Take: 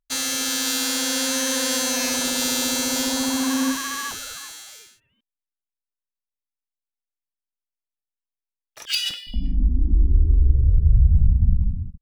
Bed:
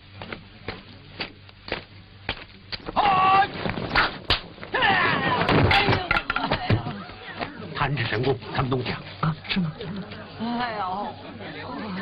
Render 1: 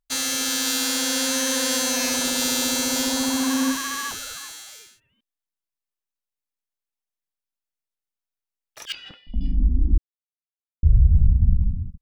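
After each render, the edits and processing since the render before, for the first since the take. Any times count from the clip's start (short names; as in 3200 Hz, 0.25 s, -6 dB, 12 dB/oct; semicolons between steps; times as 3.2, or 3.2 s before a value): 8.92–9.41 LPF 1200 Hz; 9.98–10.83 mute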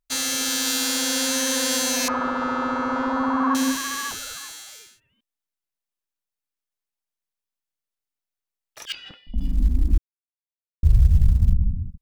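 2.08–3.55 synth low-pass 1200 Hz, resonance Q 6.1; 9.38–11.53 G.711 law mismatch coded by A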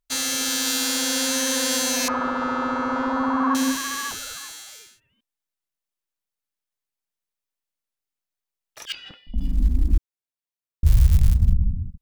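10.86–11.34 switching spikes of -13.5 dBFS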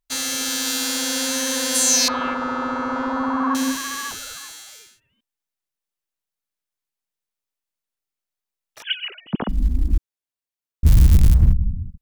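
1.74–2.33 bell 9900 Hz -> 2300 Hz +12 dB 0.73 oct; 8.82–9.49 sine-wave speech; 10.85–11.52 sample leveller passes 2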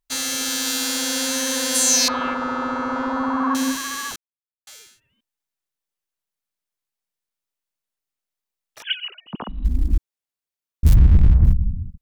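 4.16–4.67 mute; 9–9.65 rippled Chebyshev low-pass 4000 Hz, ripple 9 dB; 10.94–11.45 LPF 1900 Hz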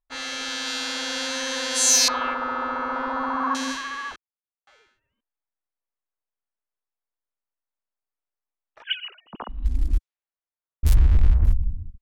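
low-pass opened by the level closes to 1300 Hz, open at -12.5 dBFS; bell 160 Hz -13 dB 2.1 oct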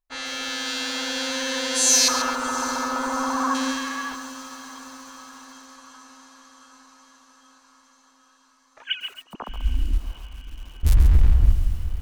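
diffused feedback echo 0.716 s, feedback 64%, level -15 dB; lo-fi delay 0.136 s, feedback 35%, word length 7-bit, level -9 dB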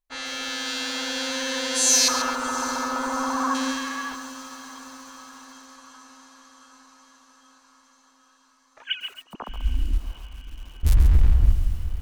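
gain -1 dB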